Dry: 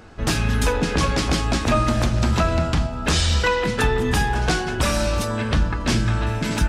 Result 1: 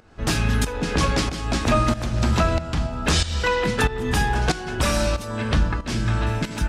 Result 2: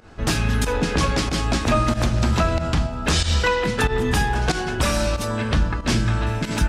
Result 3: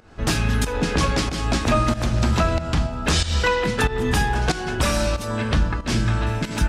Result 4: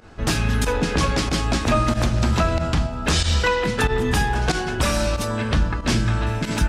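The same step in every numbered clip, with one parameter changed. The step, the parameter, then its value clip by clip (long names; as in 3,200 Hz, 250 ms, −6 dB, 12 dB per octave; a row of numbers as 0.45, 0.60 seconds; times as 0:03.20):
fake sidechain pumping, release: 506, 108, 245, 73 milliseconds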